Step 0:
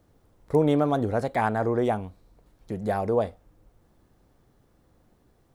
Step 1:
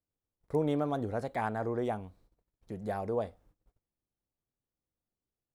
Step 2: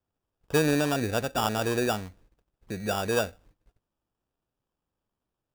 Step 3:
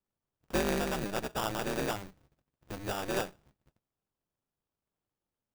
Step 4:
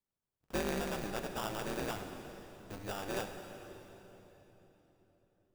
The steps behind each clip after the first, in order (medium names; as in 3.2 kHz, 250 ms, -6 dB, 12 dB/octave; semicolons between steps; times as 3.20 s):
gate -54 dBFS, range -23 dB; trim -8.5 dB
sample-and-hold 21×; trim +6 dB
polarity switched at an audio rate 100 Hz; trim -6.5 dB
reverberation RT60 3.9 s, pre-delay 36 ms, DRR 6.5 dB; trim -5.5 dB